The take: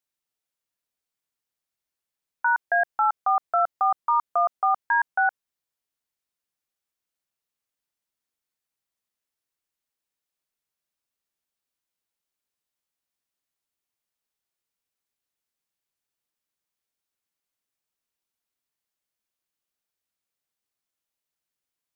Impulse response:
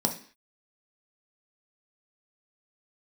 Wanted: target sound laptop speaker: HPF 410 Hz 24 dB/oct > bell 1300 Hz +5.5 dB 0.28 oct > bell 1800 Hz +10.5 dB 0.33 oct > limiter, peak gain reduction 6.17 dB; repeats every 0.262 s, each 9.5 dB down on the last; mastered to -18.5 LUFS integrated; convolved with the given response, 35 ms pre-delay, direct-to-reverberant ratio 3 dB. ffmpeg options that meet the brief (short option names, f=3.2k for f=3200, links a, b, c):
-filter_complex "[0:a]aecho=1:1:262|524|786|1048:0.335|0.111|0.0365|0.012,asplit=2[a][b];[1:a]atrim=start_sample=2205,adelay=35[c];[b][c]afir=irnorm=-1:irlink=0,volume=-11.5dB[d];[a][d]amix=inputs=2:normalize=0,highpass=f=410:w=0.5412,highpass=f=410:w=1.3066,equalizer=f=1.3k:t=o:w=0.28:g=5.5,equalizer=f=1.8k:t=o:w=0.33:g=10.5,volume=2dB,alimiter=limit=-8.5dB:level=0:latency=1"